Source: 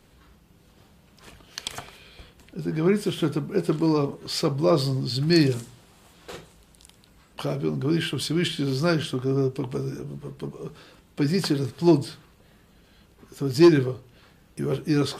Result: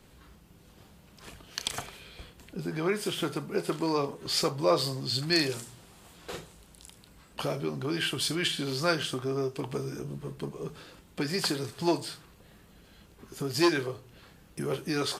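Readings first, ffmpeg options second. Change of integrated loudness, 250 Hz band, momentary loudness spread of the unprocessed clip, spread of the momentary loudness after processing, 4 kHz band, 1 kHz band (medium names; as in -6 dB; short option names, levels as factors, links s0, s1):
-6.0 dB, -9.0 dB, 19 LU, 19 LU, +0.5 dB, -0.5 dB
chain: -filter_complex "[0:a]acrossover=split=470|5000[s0][s1][s2];[s0]acompressor=threshold=0.02:ratio=6[s3];[s2]aecho=1:1:32|77:0.708|0.251[s4];[s3][s1][s4]amix=inputs=3:normalize=0"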